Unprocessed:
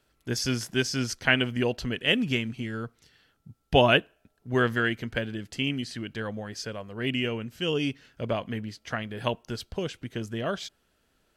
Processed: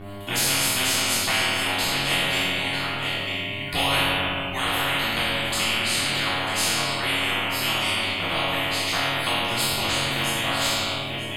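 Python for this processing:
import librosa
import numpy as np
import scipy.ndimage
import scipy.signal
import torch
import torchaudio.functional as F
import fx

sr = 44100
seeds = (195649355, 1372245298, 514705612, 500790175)

p1 = fx.hpss_only(x, sr, part='percussive')
p2 = fx.rider(p1, sr, range_db=10, speed_s=0.5)
p3 = p1 + (p2 * 10.0 ** (-0.5 / 20.0))
p4 = fx.peak_eq(p3, sr, hz=3300.0, db=3.0, octaves=2.4)
p5 = fx.fixed_phaser(p4, sr, hz=1600.0, stages=6)
p6 = fx.resonator_bank(p5, sr, root=42, chord='minor', decay_s=0.49)
p7 = fx.dmg_buzz(p6, sr, base_hz=100.0, harmonics=22, level_db=-64.0, tilt_db=-8, odd_only=False)
p8 = fx.doubler(p7, sr, ms=23.0, db=-3)
p9 = p8 + fx.echo_single(p8, sr, ms=943, db=-16.0, dry=0)
p10 = fx.room_shoebox(p9, sr, seeds[0], volume_m3=540.0, walls='mixed', distance_m=3.4)
y = fx.spectral_comp(p10, sr, ratio=4.0)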